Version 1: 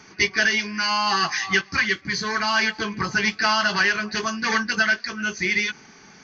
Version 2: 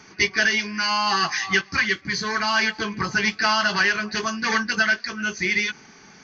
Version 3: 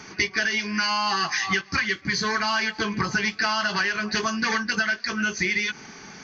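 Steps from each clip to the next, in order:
no processing that can be heard
downward compressor, threshold −27 dBFS, peak gain reduction 11 dB; level +5.5 dB

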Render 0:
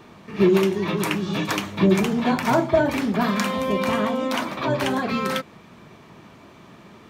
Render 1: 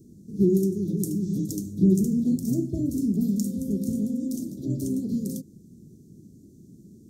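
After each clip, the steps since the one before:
inverse Chebyshev band-stop filter 950–2,400 Hz, stop band 70 dB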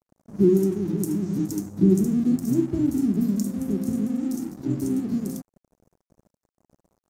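dynamic equaliser 320 Hz, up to +6 dB, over −37 dBFS, Q 2
dead-zone distortion −44 dBFS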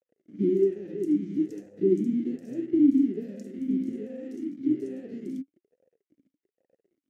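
formant filter swept between two vowels e-i 1.2 Hz
level +6 dB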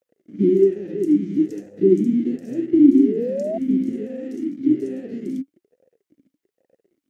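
sound drawn into the spectrogram rise, 0:02.82–0:03.58, 320–680 Hz −32 dBFS
level +7.5 dB

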